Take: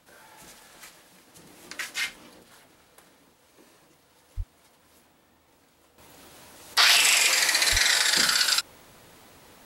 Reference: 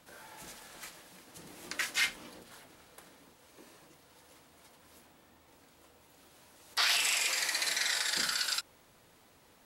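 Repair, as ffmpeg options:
-filter_complex "[0:a]asplit=3[a][b][c];[a]afade=t=out:st=4.36:d=0.02[d];[b]highpass=f=140:w=0.5412,highpass=f=140:w=1.3066,afade=t=in:st=4.36:d=0.02,afade=t=out:st=4.48:d=0.02[e];[c]afade=t=in:st=4.48:d=0.02[f];[d][e][f]amix=inputs=3:normalize=0,asplit=3[g][h][i];[g]afade=t=out:st=7.71:d=0.02[j];[h]highpass=f=140:w=0.5412,highpass=f=140:w=1.3066,afade=t=in:st=7.71:d=0.02,afade=t=out:st=7.83:d=0.02[k];[i]afade=t=in:st=7.83:d=0.02[l];[j][k][l]amix=inputs=3:normalize=0,asetnsamples=n=441:p=0,asendcmd='5.98 volume volume -10dB',volume=0dB"

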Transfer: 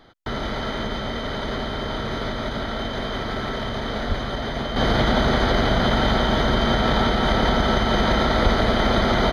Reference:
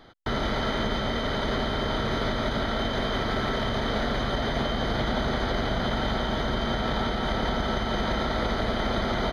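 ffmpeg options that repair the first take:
-filter_complex "[0:a]asplit=3[a][b][c];[a]afade=t=out:st=4.08:d=0.02[d];[b]highpass=f=140:w=0.5412,highpass=f=140:w=1.3066,afade=t=in:st=4.08:d=0.02,afade=t=out:st=4.2:d=0.02[e];[c]afade=t=in:st=4.2:d=0.02[f];[d][e][f]amix=inputs=3:normalize=0,asplit=3[g][h][i];[g]afade=t=out:st=8.43:d=0.02[j];[h]highpass=f=140:w=0.5412,highpass=f=140:w=1.3066,afade=t=in:st=8.43:d=0.02,afade=t=out:st=8.55:d=0.02[k];[i]afade=t=in:st=8.55:d=0.02[l];[j][k][l]amix=inputs=3:normalize=0,asetnsamples=n=441:p=0,asendcmd='4.76 volume volume -7.5dB',volume=0dB"

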